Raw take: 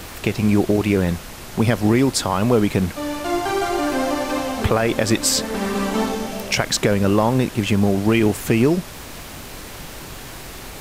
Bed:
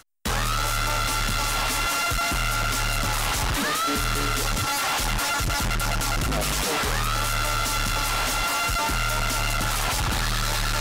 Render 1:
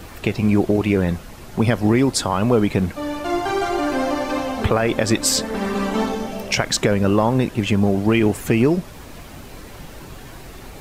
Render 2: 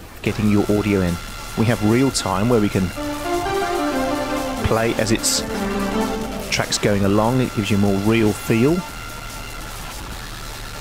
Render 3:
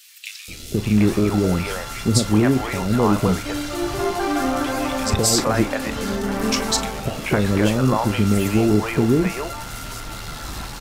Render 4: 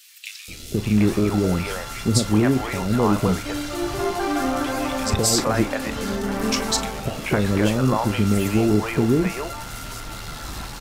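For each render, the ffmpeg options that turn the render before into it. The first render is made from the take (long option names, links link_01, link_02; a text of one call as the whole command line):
ffmpeg -i in.wav -af "afftdn=noise_reduction=8:noise_floor=-36" out.wav
ffmpeg -i in.wav -i bed.wav -filter_complex "[1:a]volume=-8dB[link_01];[0:a][link_01]amix=inputs=2:normalize=0" out.wav
ffmpeg -i in.wav -filter_complex "[0:a]asplit=2[link_01][link_02];[link_02]adelay=38,volume=-12.5dB[link_03];[link_01][link_03]amix=inputs=2:normalize=0,acrossover=split=540|2500[link_04][link_05][link_06];[link_04]adelay=480[link_07];[link_05]adelay=740[link_08];[link_07][link_08][link_06]amix=inputs=3:normalize=0" out.wav
ffmpeg -i in.wav -af "volume=-1.5dB" out.wav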